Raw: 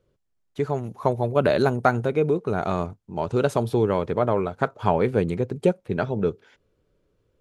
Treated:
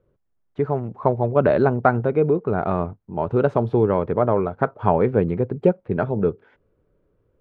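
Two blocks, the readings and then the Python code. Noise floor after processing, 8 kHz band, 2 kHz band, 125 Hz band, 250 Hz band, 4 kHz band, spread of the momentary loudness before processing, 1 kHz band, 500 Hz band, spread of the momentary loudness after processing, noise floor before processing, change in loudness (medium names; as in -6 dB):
-68 dBFS, no reading, 0.0 dB, +3.0 dB, +3.0 dB, under -10 dB, 7 LU, +2.5 dB, +3.0 dB, 7 LU, -71 dBFS, +3.0 dB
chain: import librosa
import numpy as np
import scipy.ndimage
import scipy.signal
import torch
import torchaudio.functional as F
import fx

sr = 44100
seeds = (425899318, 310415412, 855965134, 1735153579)

y = scipy.signal.sosfilt(scipy.signal.butter(2, 1600.0, 'lowpass', fs=sr, output='sos'), x)
y = y * librosa.db_to_amplitude(3.0)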